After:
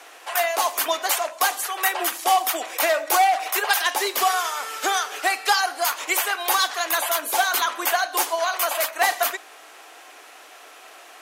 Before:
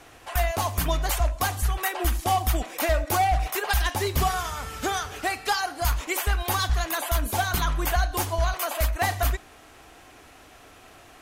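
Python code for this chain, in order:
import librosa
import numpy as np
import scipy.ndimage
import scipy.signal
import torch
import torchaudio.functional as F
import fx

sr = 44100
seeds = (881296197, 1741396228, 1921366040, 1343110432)

y = scipy.signal.sosfilt(scipy.signal.bessel(8, 570.0, 'highpass', norm='mag', fs=sr, output='sos'), x)
y = y * 10.0 ** (6.5 / 20.0)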